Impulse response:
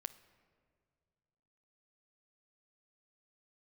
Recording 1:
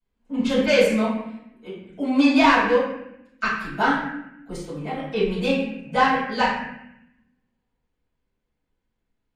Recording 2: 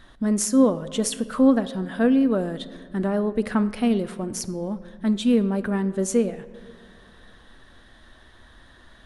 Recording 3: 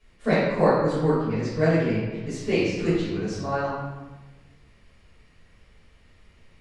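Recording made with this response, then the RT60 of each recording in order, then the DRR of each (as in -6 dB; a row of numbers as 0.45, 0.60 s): 2; 0.80, 2.1, 1.2 s; -15.5, 11.5, -13.0 dB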